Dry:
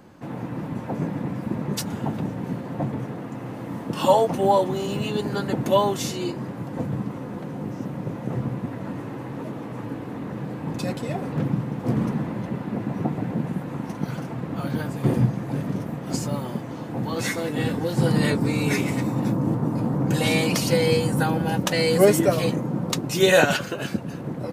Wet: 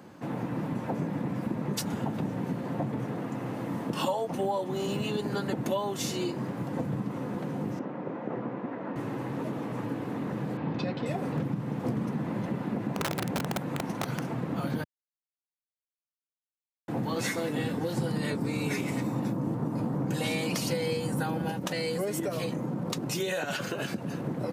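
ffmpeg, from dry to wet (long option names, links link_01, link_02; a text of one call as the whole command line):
ffmpeg -i in.wav -filter_complex "[0:a]asettb=1/sr,asplit=3[link_01][link_02][link_03];[link_01]atrim=end=6.014[link_04];[link_02]atrim=start=6.01:end=6.71,asetpts=PTS-STARTPTS,afade=type=in:duration=0.004:curve=qsin,afade=type=out:start_time=0.696:duration=0.004:curve=qsin,aeval=exprs='sgn(val(0))*max(abs(val(0))-0.00141,0)':channel_layout=same[link_05];[link_03]atrim=start=6.706[link_06];[link_04][link_05]acrossfade=duration=0.004:curve1=hsin:curve2=qsin[link_07];[link_07][link_06]acrossfade=duration=0.004:curve1=qsin:curve2=hsin,asettb=1/sr,asplit=3[link_08][link_09][link_10];[link_08]atrim=end=7.794[link_11];[link_09]atrim=start=7.79:end=8.96,asetpts=PTS-STARTPTS,afade=type=in:duration=0.004:curve=qsin,afade=type=out:start_time=1.166:duration=0.004:curve=qsin,highpass=280,lowpass=2100[link_12];[link_10]atrim=start=8.956[link_13];[link_11][link_12]acrossfade=duration=0.004:curve1=hsin:curve2=qsin[link_14];[link_14][link_13]acrossfade=duration=0.004:curve1=qsin:curve2=hsin,asettb=1/sr,asplit=3[link_15][link_16][link_17];[link_15]atrim=end=10.574[link_18];[link_16]atrim=start=10.57:end=11.06,asetpts=PTS-STARTPTS,afade=type=in:duration=0.004:curve=qsin,afade=type=out:start_time=0.486:duration=0.004:curve=qsin,lowpass=frequency=4300:width=0.5412,lowpass=frequency=4300:width=1.3066[link_19];[link_17]atrim=start=11.056[link_20];[link_18][link_19]acrossfade=duration=0.004:curve1=hsin:curve2=qsin[link_21];[link_21][link_20]acrossfade=duration=0.004:curve1=qsin:curve2=hsin,asettb=1/sr,asplit=3[link_22][link_23][link_24];[link_22]atrim=end=12.944[link_25];[link_23]atrim=start=12.94:end=14.34,asetpts=PTS-STARTPTS,afade=type=in:duration=0.004:curve=qsin,afade=type=out:start_time=1.396:duration=0.004:curve=qsin,aeval=exprs='(mod(10*val(0)+1,2)-1)/10':channel_layout=same[link_26];[link_24]atrim=start=14.336[link_27];[link_25][link_26]acrossfade=duration=0.004:curve1=hsin:curve2=qsin[link_28];[link_28][link_27]acrossfade=duration=0.004:curve1=qsin:curve2=hsin,asettb=1/sr,asplit=3[link_29][link_30][link_31];[link_29]atrim=end=21.514[link_32];[link_30]atrim=start=21.51:end=24.14,asetpts=PTS-STARTPTS,afade=type=in:duration=0.004:curve=qsin,afade=type=out:start_time=2.626:duration=0.004:curve=qsin,acompressor=threshold=-27dB:ratio=3:attack=3.2:release=140:knee=1:detection=peak[link_33];[link_31]atrim=start=24.136[link_34];[link_32][link_33]acrossfade=duration=0.004:curve1=hsin:curve2=qsin[link_35];[link_35][link_34]acrossfade=duration=0.004:curve1=qsin:curve2=hsin,asplit=3[link_36][link_37][link_38];[link_36]atrim=end=14.84,asetpts=PTS-STARTPTS,afade=type=out:start_time=14.836:duration=0.004:curve=hsin[link_39];[link_37]atrim=start=14.84:end=16.88,asetpts=PTS-STARTPTS,volume=0[link_40];[link_38]atrim=start=16.88,asetpts=PTS-STARTPTS,afade=type=in:duration=0.004:curve=hsin[link_41];[link_39][link_40][link_41]concat=n=3:v=0:a=1,highpass=110,acompressor=threshold=-27dB:ratio=6" out.wav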